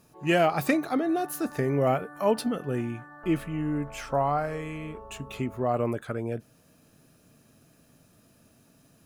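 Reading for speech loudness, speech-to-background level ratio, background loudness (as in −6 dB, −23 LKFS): −28.5 LKFS, 18.0 dB, −46.5 LKFS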